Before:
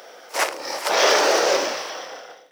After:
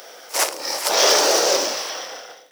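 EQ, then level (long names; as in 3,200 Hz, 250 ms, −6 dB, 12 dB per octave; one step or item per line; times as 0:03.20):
dynamic equaliser 2,000 Hz, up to −5 dB, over −32 dBFS, Q 0.88
high-shelf EQ 3,900 Hz +10.5 dB
0.0 dB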